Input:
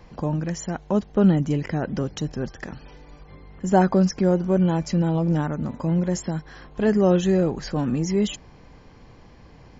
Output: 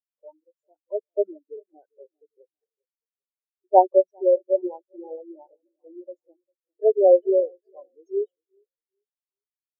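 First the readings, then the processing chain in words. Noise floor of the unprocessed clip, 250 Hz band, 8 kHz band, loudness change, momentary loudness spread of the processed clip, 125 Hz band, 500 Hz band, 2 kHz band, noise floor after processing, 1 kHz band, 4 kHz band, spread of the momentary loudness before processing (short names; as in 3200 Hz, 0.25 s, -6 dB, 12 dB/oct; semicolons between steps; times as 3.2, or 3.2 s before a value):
-49 dBFS, -15.5 dB, n/a, +1.0 dB, 22 LU, under -40 dB, +3.5 dB, under -40 dB, under -85 dBFS, +3.5 dB, under -40 dB, 12 LU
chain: bin magnitudes rounded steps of 30 dB; HPF 380 Hz 24 dB/oct; in parallel at -8 dB: soft clip -16 dBFS, distortion -15 dB; on the sum: feedback echo 0.4 s, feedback 57%, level -9.5 dB; spectral expander 4:1; gain +4.5 dB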